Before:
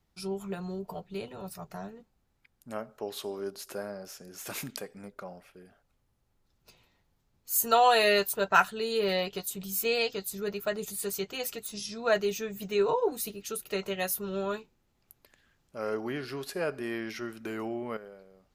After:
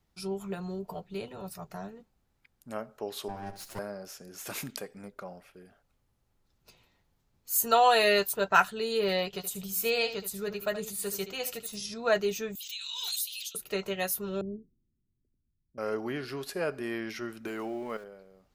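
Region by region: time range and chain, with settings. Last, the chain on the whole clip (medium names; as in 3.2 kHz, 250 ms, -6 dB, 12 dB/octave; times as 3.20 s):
3.28–3.79 s: comb filter that takes the minimum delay 9 ms + flutter echo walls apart 11.9 m, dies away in 0.35 s + three bands expanded up and down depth 40%
9.26–11.94 s: peaking EQ 310 Hz -8.5 dB 0.33 oct + delay 75 ms -11.5 dB
12.55–13.55 s: ladder high-pass 3 kHz, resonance 65% + peaking EQ 13 kHz +12.5 dB 2.2 oct + swell ahead of each attack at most 24 dB/s
14.41–15.78 s: inverse Chebyshev low-pass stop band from 1.1 kHz, stop band 60 dB + three bands expanded up and down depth 40%
17.48–18.04 s: jump at every zero crossing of -50 dBFS + peaking EQ 75 Hz -9.5 dB 2.3 oct
whole clip: none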